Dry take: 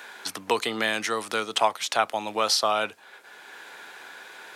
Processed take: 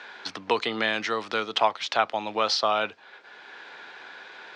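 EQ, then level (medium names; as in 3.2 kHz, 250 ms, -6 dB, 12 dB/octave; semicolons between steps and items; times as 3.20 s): low-pass 5 kHz 24 dB/octave; 0.0 dB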